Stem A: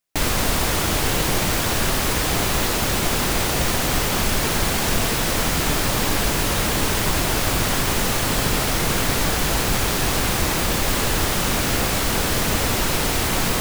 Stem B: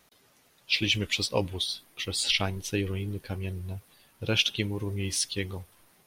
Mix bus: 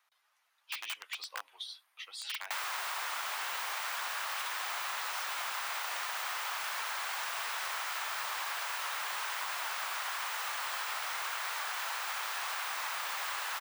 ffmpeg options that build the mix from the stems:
-filter_complex "[0:a]adelay=2350,volume=1dB[a];[1:a]aeval=exprs='(mod(7.08*val(0)+1,2)-1)/7.08':c=same,volume=-3dB[b];[a][b]amix=inputs=2:normalize=0,highpass=f=960:w=0.5412,highpass=f=960:w=1.3066,equalizer=f=13k:t=o:w=3:g=-13.5,acompressor=threshold=-34dB:ratio=6"

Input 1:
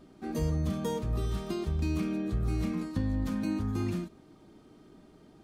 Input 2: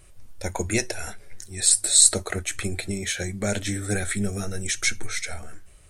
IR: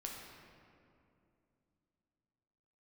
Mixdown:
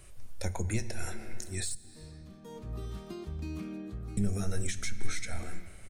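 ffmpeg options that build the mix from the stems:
-filter_complex "[0:a]adelay=1600,volume=-8dB,afade=t=in:st=2.42:d=0.28:silence=0.266073,afade=t=out:st=3.76:d=0.77:silence=0.281838[a];[1:a]asoftclip=type=tanh:threshold=-11dB,volume=-2.5dB,asplit=3[b][c][d];[b]atrim=end=1.75,asetpts=PTS-STARTPTS,afade=t=out:st=1.746:d=0.004:c=hsin[e];[c]atrim=start=1.75:end=4.17,asetpts=PTS-STARTPTS,volume=0[f];[d]atrim=start=4.17,asetpts=PTS-STARTPTS,afade=t=in:d=0.004:c=hsin[g];[e][f][g]concat=n=3:v=0:a=1,asplit=2[h][i];[i]volume=-7.5dB[j];[2:a]atrim=start_sample=2205[k];[j][k]afir=irnorm=-1:irlink=0[l];[a][h][l]amix=inputs=3:normalize=0,acrossover=split=190[m][n];[n]acompressor=threshold=-36dB:ratio=10[o];[m][o]amix=inputs=2:normalize=0"

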